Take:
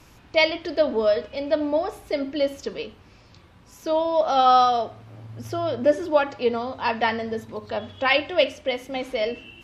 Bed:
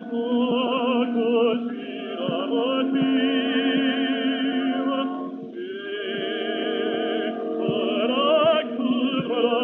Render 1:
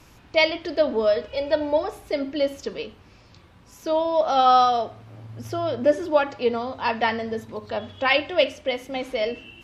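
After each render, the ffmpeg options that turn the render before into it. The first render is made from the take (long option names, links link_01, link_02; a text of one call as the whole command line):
ffmpeg -i in.wav -filter_complex "[0:a]asettb=1/sr,asplit=3[link_01][link_02][link_03];[link_01]atrim=end=1.284[link_04];[link_02]atrim=start=1.28:end=1.84,asetpts=PTS-STARTPTS,afade=type=in:duration=0.004:curve=qsin,afade=type=out:start_time=0.556:duration=0.004:curve=qsin,aecho=1:1:2.1:0.84,atrim=end_sample=24696[link_05];[link_03]atrim=start=1.836[link_06];[link_04][link_05]acrossfade=duration=0.004:curve1=hsin:curve2=qsin[link_07];[link_07][link_06]acrossfade=duration=0.004:curve1=qsin:curve2=hsin" out.wav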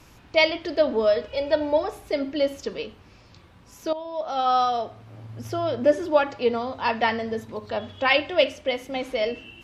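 ffmpeg -i in.wav -filter_complex "[0:a]asplit=2[link_01][link_02];[link_01]atrim=end=3.93,asetpts=PTS-STARTPTS,afade=type=out:start_time=3.926:duration=0.004:curve=hsin:silence=0.199526[link_03];[link_02]atrim=start=3.93,asetpts=PTS-STARTPTS,afade=type=in:duration=1.31:silence=0.199526[link_04];[link_03][link_04]concat=n=2:v=0:a=1" out.wav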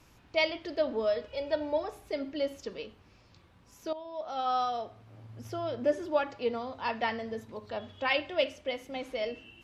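ffmpeg -i in.wav -af "volume=-8.5dB" out.wav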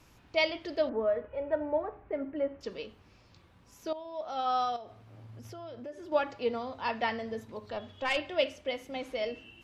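ffmpeg -i in.wav -filter_complex "[0:a]asettb=1/sr,asplit=3[link_01][link_02][link_03];[link_01]atrim=end=0.894[link_04];[link_02]atrim=start=0.89:end=2.61,asetpts=PTS-STARTPTS,afade=type=in:duration=0.004:curve=qsin,afade=type=out:start_time=1.716:duration=0.004:curve=qsin,lowpass=frequency=1900:width=0.5412,lowpass=frequency=1900:width=1.3066[link_05];[link_03]atrim=start=2.606[link_06];[link_04][link_05]acrossfade=duration=0.004:curve1=hsin:curve2=qsin[link_07];[link_07][link_06]acrossfade=duration=0.004:curve1=qsin:curve2=hsin,asettb=1/sr,asplit=3[link_08][link_09][link_10];[link_08]atrim=end=4.764[link_11];[link_09]atrim=start=4.76:end=6.12,asetpts=PTS-STARTPTS,afade=type=in:duration=0.004:curve=qsin,afade=type=out:start_time=1.356:duration=0.004:curve=qsin,acompressor=threshold=-44dB:ratio=3:attack=3.2:release=140:knee=1:detection=peak[link_12];[link_10]atrim=start=6.116[link_13];[link_11][link_12]acrossfade=duration=0.004:curve1=hsin:curve2=qsin[link_14];[link_14][link_13]acrossfade=duration=0.004:curve1=qsin:curve2=hsin,asettb=1/sr,asplit=3[link_15][link_16][link_17];[link_15]atrim=end=7.734[link_18];[link_16]atrim=start=7.73:end=8.17,asetpts=PTS-STARTPTS,afade=type=in:duration=0.004:curve=qsin,afade=type=out:start_time=0.436:duration=0.004:curve=qsin,aeval=exprs='(tanh(11.2*val(0)+0.35)-tanh(0.35))/11.2':channel_layout=same[link_19];[link_17]atrim=start=8.166[link_20];[link_18][link_19]acrossfade=duration=0.004:curve1=hsin:curve2=qsin[link_21];[link_21][link_20]acrossfade=duration=0.004:curve1=qsin:curve2=hsin" out.wav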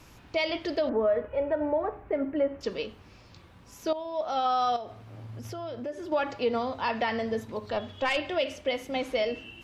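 ffmpeg -i in.wav -af "acontrast=84,alimiter=limit=-18dB:level=0:latency=1:release=91" out.wav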